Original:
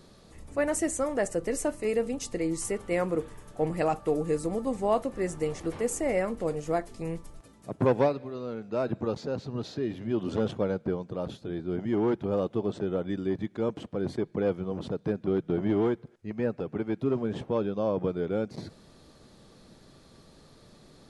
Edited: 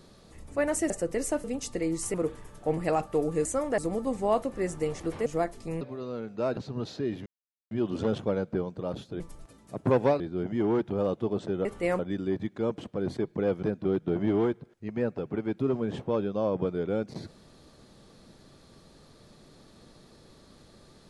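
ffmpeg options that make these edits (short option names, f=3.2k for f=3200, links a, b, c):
-filter_complex "[0:a]asplit=15[a][b][c][d][e][f][g][h][i][j][k][l][m][n][o];[a]atrim=end=0.902[p];[b]atrim=start=1.228:end=1.772[q];[c]atrim=start=2.028:end=2.732[r];[d]atrim=start=3.068:end=4.382[s];[e]atrim=start=0.898:end=1.232[t];[f]atrim=start=4.378:end=5.862[u];[g]atrim=start=6.598:end=7.152[v];[h]atrim=start=8.148:end=8.912[w];[i]atrim=start=9.348:end=10.04,asetpts=PTS-STARTPTS,afade=t=out:st=0.688:d=0.004:c=hsin,apad=pad_dur=0.45[x];[j]atrim=start=10.04:end=11.532,asetpts=PTS-STARTPTS,afade=t=in:d=0.004:c=hsin[y];[k]atrim=start=7.148:end=8.152[z];[l]atrim=start=11.528:end=12.982[aa];[m]atrim=start=2.728:end=3.072[ab];[n]atrim=start=12.978:end=14.622[ac];[o]atrim=start=15.048[ad];[p][q]acrossfade=d=0.004:c1=hsin:c2=hsin[ae];[ae][r]acrossfade=d=0.004:c1=hsin:c2=hsin[af];[af][s]acrossfade=d=0.004:c1=hsin:c2=hsin[ag];[ag][t]acrossfade=d=0.004:c1=hsin:c2=hsin[ah];[ah][u]acrossfade=d=0.004:c1=hsin:c2=hsin[ai];[ai][v]acrossfade=d=0.004:c1=hsin:c2=hsin[aj];[aj][w]acrossfade=d=0.004:c1=hsin:c2=hsin[ak];[x][y]concat=n=2:v=0:a=1[al];[ak][al]acrossfade=d=0.004:c1=hsin:c2=hsin[am];[am][z]acrossfade=d=0.004:c1=hsin:c2=hsin[an];[an][aa]acrossfade=d=0.004:c1=hsin:c2=hsin[ao];[ao][ab]acrossfade=d=0.004:c1=hsin:c2=hsin[ap];[ap][ac]acrossfade=d=0.004:c1=hsin:c2=hsin[aq];[aq][ad]acrossfade=d=0.004:c1=hsin:c2=hsin"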